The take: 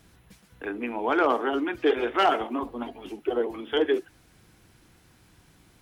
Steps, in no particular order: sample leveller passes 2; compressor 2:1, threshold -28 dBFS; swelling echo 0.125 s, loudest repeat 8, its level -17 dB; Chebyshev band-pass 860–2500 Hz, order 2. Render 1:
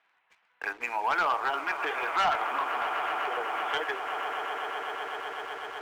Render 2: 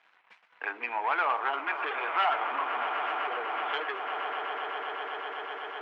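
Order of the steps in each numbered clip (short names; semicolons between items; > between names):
swelling echo > compressor > Chebyshev band-pass > sample leveller; swelling echo > compressor > sample leveller > Chebyshev band-pass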